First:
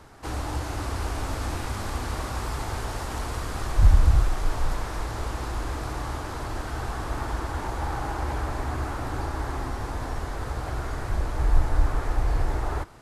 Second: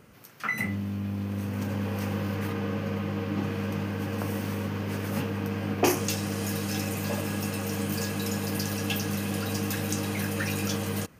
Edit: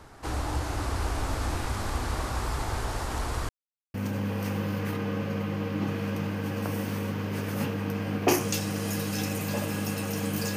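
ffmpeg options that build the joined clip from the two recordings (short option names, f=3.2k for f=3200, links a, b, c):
-filter_complex "[0:a]apad=whole_dur=10.56,atrim=end=10.56,asplit=2[a][b];[a]atrim=end=3.49,asetpts=PTS-STARTPTS,afade=t=out:st=3.486:d=0.004:c=hsin[c];[b]atrim=start=3.49:end=3.94,asetpts=PTS-STARTPTS,volume=0[d];[1:a]atrim=start=1.5:end=8.12,asetpts=PTS-STARTPTS,afade=t=in:d=0.004:c=hsin[e];[c][d][e]concat=n=3:v=0:a=1"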